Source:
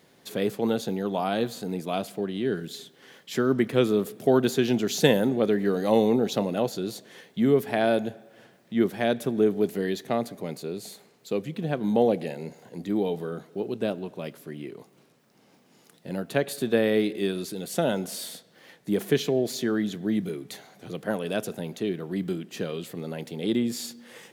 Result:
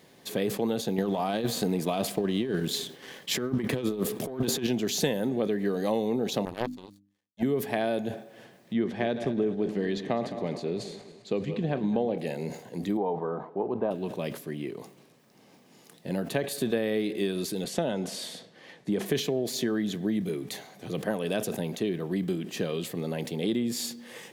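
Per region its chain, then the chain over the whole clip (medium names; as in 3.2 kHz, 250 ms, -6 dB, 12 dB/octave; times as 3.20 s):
0.98–4.67 s: waveshaping leveller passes 1 + compressor with a negative ratio -25 dBFS, ratio -0.5
6.45–7.43 s: power-law waveshaper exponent 3 + hum notches 50/100/150/200/250/300 Hz
8.73–12.18 s: backward echo that repeats 104 ms, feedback 65%, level -13 dB + distance through air 110 m
12.97–13.91 s: resonant low-pass 950 Hz, resonance Q 3.7 + tilt EQ +2 dB/octave
17.64–19.06 s: high-pass 63 Hz + distance through air 56 m
whole clip: compression 5:1, threshold -27 dBFS; band-stop 1.4 kHz, Q 9.2; decay stretcher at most 110 dB/s; trim +2.5 dB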